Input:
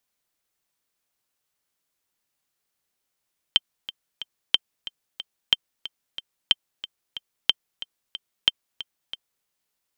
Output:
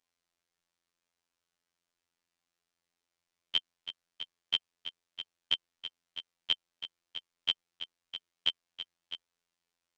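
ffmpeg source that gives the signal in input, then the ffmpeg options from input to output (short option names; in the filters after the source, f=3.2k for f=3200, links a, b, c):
-f lavfi -i "aevalsrc='pow(10,(-3-16*gte(mod(t,3*60/183),60/183))/20)*sin(2*PI*3130*mod(t,60/183))*exp(-6.91*mod(t,60/183)/0.03)':d=5.9:s=44100"
-af "lowpass=6.6k,alimiter=limit=-8dB:level=0:latency=1:release=102,afftfilt=real='hypot(re,im)*cos(PI*b)':imag='0':win_size=2048:overlap=0.75"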